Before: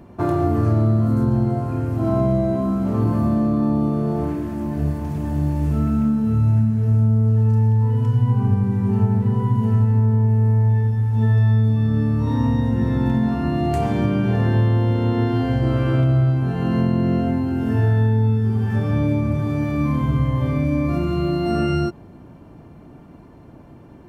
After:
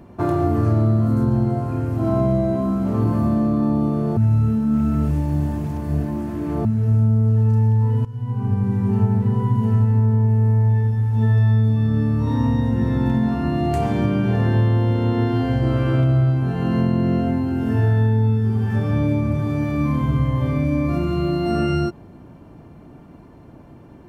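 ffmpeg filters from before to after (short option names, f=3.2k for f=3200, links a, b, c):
-filter_complex "[0:a]asplit=4[a][b][c][d];[a]atrim=end=4.172[e];[b]atrim=start=4.168:end=6.652,asetpts=PTS-STARTPTS,areverse[f];[c]atrim=start=6.648:end=8.05,asetpts=PTS-STARTPTS,afade=t=out:st=1.398:d=0.004:c=hsin:silence=0.112202[g];[d]atrim=start=8.05,asetpts=PTS-STARTPTS,afade=t=in:d=0.65:silence=0.112202[h];[e][f]acrossfade=d=0.004:c1=hsin:c2=hsin[i];[g][h]concat=n=2:v=0:a=1[j];[i][j]acrossfade=d=0.004:c1=hsin:c2=hsin"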